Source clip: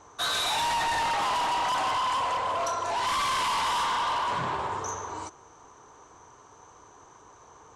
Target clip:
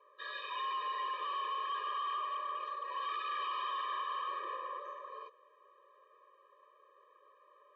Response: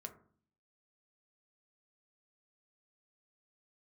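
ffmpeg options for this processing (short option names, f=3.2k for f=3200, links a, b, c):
-af "highpass=f=220:t=q:w=0.5412,highpass=f=220:t=q:w=1.307,lowpass=f=3.3k:t=q:w=0.5176,lowpass=f=3.3k:t=q:w=0.7071,lowpass=f=3.3k:t=q:w=1.932,afreqshift=130,afftfilt=real='re*eq(mod(floor(b*sr/1024/320),2),1)':imag='im*eq(mod(floor(b*sr/1024/320),2),1)':win_size=1024:overlap=0.75,volume=-9dB"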